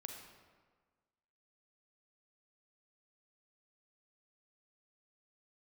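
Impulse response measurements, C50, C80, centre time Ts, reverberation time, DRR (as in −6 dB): 3.5 dB, 5.5 dB, 48 ms, 1.5 s, 2.5 dB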